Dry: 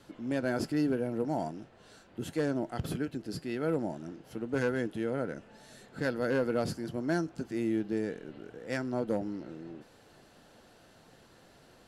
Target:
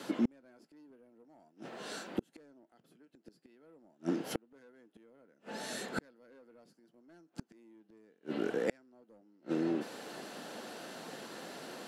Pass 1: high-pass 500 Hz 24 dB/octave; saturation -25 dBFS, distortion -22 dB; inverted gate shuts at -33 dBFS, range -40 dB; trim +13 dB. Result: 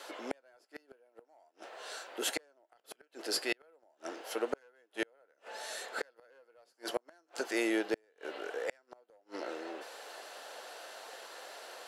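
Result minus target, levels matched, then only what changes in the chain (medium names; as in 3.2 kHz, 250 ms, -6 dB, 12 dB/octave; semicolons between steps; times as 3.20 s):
250 Hz band -4.0 dB
change: high-pass 190 Hz 24 dB/octave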